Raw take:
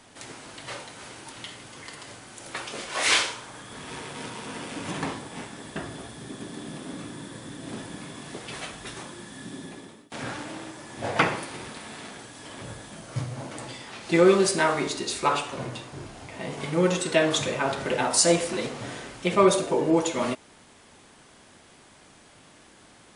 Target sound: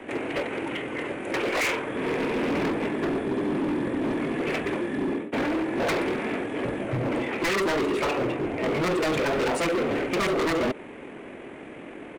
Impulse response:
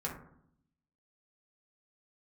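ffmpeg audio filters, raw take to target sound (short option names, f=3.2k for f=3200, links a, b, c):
-filter_complex "[0:a]acrossover=split=350|400|1500[a][b][c][d];[b]aeval=exprs='0.112*sin(PI/2*7.94*val(0)/0.112)':c=same[e];[a][e][c][d]amix=inputs=4:normalize=0,acompressor=threshold=-23dB:ratio=3,atempo=1.9,highshelf=f=3.4k:t=q:w=3:g=-13,asoftclip=type=hard:threshold=-29dB,volume=6dB"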